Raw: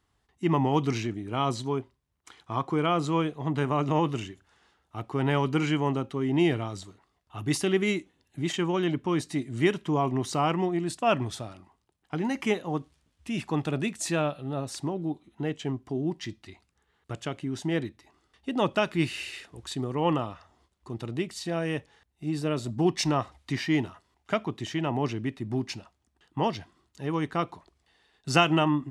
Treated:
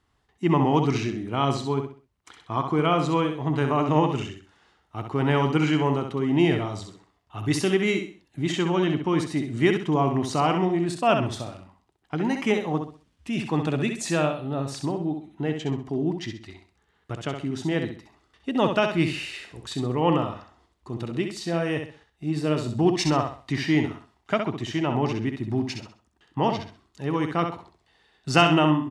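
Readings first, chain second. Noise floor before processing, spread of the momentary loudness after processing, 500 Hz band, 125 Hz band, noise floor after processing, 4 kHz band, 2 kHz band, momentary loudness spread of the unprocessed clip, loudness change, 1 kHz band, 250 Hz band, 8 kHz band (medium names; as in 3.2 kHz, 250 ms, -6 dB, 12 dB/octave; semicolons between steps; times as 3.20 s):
-74 dBFS, 14 LU, +4.0 dB, +4.0 dB, -69 dBFS, +3.0 dB, +3.5 dB, 12 LU, +3.5 dB, +4.0 dB, +4.0 dB, +0.5 dB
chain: treble shelf 8.8 kHz -9 dB; on a send: feedback delay 65 ms, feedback 31%, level -6.5 dB; on the sum: trim +3 dB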